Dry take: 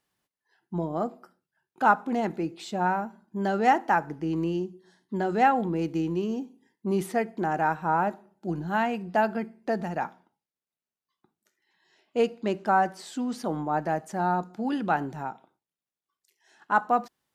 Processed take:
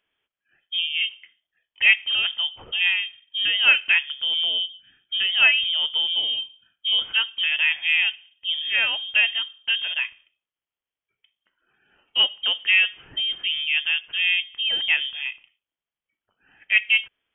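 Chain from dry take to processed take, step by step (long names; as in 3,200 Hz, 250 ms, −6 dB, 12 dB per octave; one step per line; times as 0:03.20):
voice inversion scrambler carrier 3,400 Hz
level +4 dB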